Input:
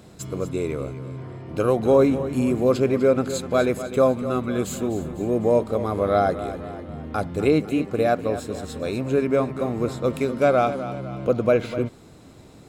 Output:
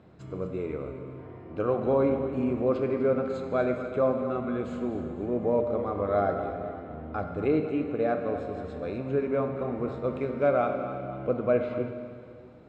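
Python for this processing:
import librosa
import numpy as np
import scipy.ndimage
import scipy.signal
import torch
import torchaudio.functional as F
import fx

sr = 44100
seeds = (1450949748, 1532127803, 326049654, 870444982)

y = scipy.signal.sosfilt(scipy.signal.butter(2, 2100.0, 'lowpass', fs=sr, output='sos'), x)
y = fx.low_shelf(y, sr, hz=160.0, db=-3.0)
y = fx.rev_plate(y, sr, seeds[0], rt60_s=2.2, hf_ratio=0.95, predelay_ms=0, drr_db=5.0)
y = y * librosa.db_to_amplitude(-6.5)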